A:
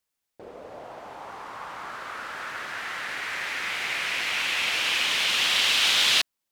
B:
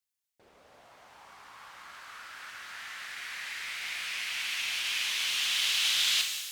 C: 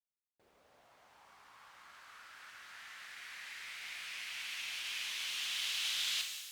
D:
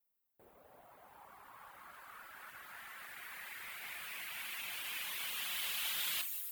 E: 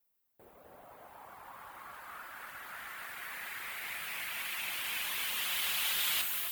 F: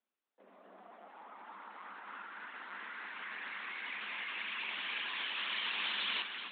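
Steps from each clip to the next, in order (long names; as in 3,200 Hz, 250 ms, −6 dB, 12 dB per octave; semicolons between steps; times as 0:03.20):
guitar amp tone stack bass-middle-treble 5-5-5; reverb with rising layers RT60 1.4 s, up +12 semitones, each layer −8 dB, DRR 3.5 dB
bit reduction 12 bits; level −9 dB
reverb reduction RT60 0.76 s; drawn EQ curve 830 Hz 0 dB, 5,800 Hz −15 dB, 16,000 Hz +11 dB; level +8 dB
delay that swaps between a low-pass and a high-pass 261 ms, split 2,000 Hz, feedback 52%, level −3.5 dB; level +5 dB
linear-prediction vocoder at 8 kHz pitch kept; Chebyshev high-pass filter 190 Hz, order 10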